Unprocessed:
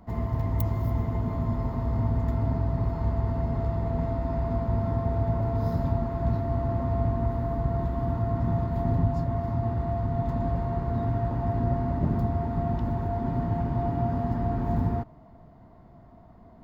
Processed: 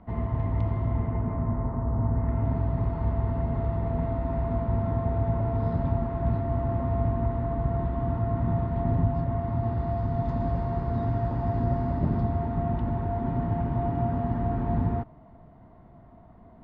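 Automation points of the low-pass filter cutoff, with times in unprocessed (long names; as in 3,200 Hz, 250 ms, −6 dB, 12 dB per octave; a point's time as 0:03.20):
low-pass filter 24 dB per octave
0:00.79 3,200 Hz
0:01.97 1,500 Hz
0:02.55 3,400 Hz
0:09.43 3,400 Hz
0:10.04 6,100 Hz
0:11.84 6,100 Hz
0:12.62 3,500 Hz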